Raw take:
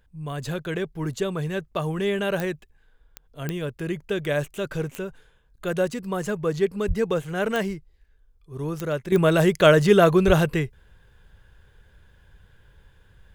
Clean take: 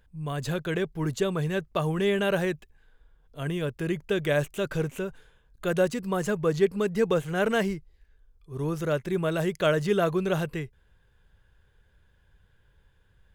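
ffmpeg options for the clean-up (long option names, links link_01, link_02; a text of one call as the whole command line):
ffmpeg -i in.wav -filter_complex "[0:a]adeclick=threshold=4,asplit=3[link_01][link_02][link_03];[link_01]afade=type=out:start_time=6.87:duration=0.02[link_04];[link_02]highpass=frequency=140:width=0.5412,highpass=frequency=140:width=1.3066,afade=type=in:start_time=6.87:duration=0.02,afade=type=out:start_time=6.99:duration=0.02[link_05];[link_03]afade=type=in:start_time=6.99:duration=0.02[link_06];[link_04][link_05][link_06]amix=inputs=3:normalize=0,asplit=3[link_07][link_08][link_09];[link_07]afade=type=out:start_time=10.26:duration=0.02[link_10];[link_08]highpass=frequency=140:width=0.5412,highpass=frequency=140:width=1.3066,afade=type=in:start_time=10.26:duration=0.02,afade=type=out:start_time=10.38:duration=0.02[link_11];[link_09]afade=type=in:start_time=10.38:duration=0.02[link_12];[link_10][link_11][link_12]amix=inputs=3:normalize=0,asetnsamples=nb_out_samples=441:pad=0,asendcmd='9.12 volume volume -8.5dB',volume=0dB" out.wav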